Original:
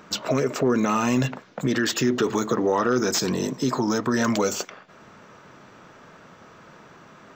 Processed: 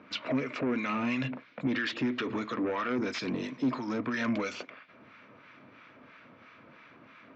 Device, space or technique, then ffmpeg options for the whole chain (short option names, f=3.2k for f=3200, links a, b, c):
guitar amplifier with harmonic tremolo: -filter_complex "[0:a]acrossover=split=1000[a][b];[a]aeval=exprs='val(0)*(1-0.7/2+0.7/2*cos(2*PI*3*n/s))':c=same[c];[b]aeval=exprs='val(0)*(1-0.7/2-0.7/2*cos(2*PI*3*n/s))':c=same[d];[c][d]amix=inputs=2:normalize=0,asoftclip=type=tanh:threshold=-21dB,highpass=86,equalizer=f=170:t=q:w=4:g=-8,equalizer=f=270:t=q:w=4:g=6,equalizer=f=400:t=q:w=4:g=-6,equalizer=f=810:t=q:w=4:g=-6,equalizer=f=2.3k:t=q:w=4:g=10,lowpass=f=4.1k:w=0.5412,lowpass=f=4.1k:w=1.3066,volume=-3dB"